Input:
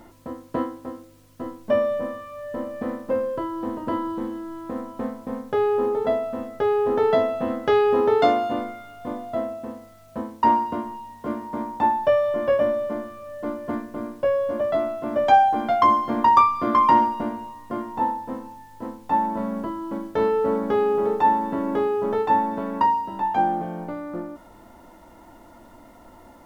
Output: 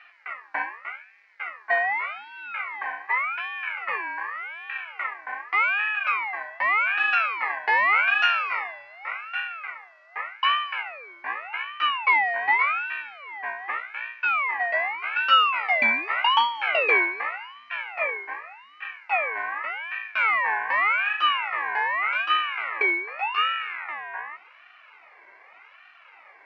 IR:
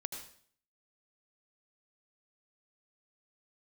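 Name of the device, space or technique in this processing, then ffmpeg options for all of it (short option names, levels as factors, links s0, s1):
voice changer toy: -af "highpass=110,aeval=exprs='val(0)*sin(2*PI*1700*n/s+1700*0.25/0.85*sin(2*PI*0.85*n/s))':c=same,highpass=520,equalizer=f=800:t=q:w=4:g=4,equalizer=f=1300:t=q:w=4:g=4,equalizer=f=2100:t=q:w=4:g=6,equalizer=f=3400:t=q:w=4:g=-8,lowpass=f=4400:w=0.5412,lowpass=f=4400:w=1.3066,volume=0.794"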